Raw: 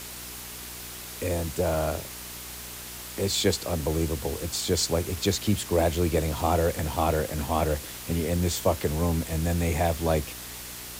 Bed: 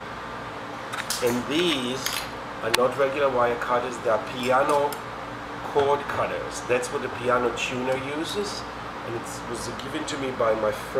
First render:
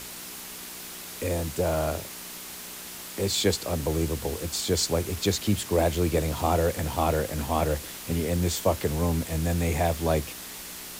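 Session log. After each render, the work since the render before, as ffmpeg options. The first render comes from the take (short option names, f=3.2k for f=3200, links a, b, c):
-af "bandreject=f=60:t=h:w=4,bandreject=f=120:t=h:w=4"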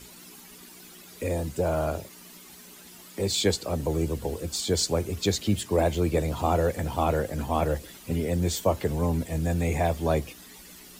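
-af "afftdn=nr=12:nf=-40"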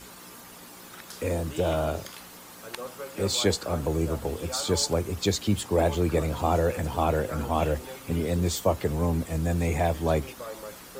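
-filter_complex "[1:a]volume=-16.5dB[a];[0:a][a]amix=inputs=2:normalize=0"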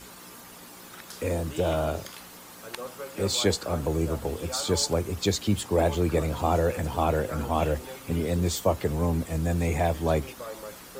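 -af anull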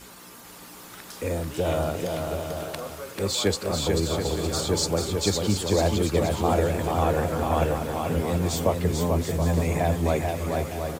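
-af "aecho=1:1:440|726|911.9|1033|1111:0.631|0.398|0.251|0.158|0.1"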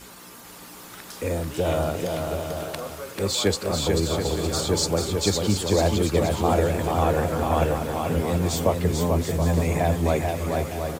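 -af "volume=1.5dB"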